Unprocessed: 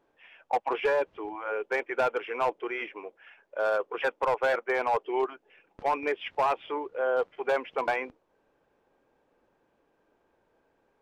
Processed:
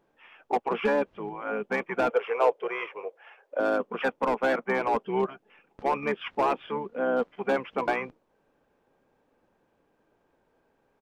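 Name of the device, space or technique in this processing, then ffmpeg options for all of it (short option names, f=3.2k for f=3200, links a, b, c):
octave pedal: -filter_complex "[0:a]asplit=2[a][b];[b]asetrate=22050,aresample=44100,atempo=2,volume=-7dB[c];[a][c]amix=inputs=2:normalize=0,asettb=1/sr,asplit=3[d][e][f];[d]atrim=end=2.104[g];[e]atrim=start=2.1:end=3.6,asetpts=PTS-STARTPTS,afade=t=in:d=0.004:c=qsin,afade=t=out:st=1.496:d=0.004:c=qsin,lowshelf=f=330:t=q:w=3:g=-13[h];[f]atrim=start=3.596[i];[g][h]acrossfade=d=0.004:c1=hsin:c2=qsin[j];[j][i]acrossfade=d=0.004:c1=qsin:c2=hsin"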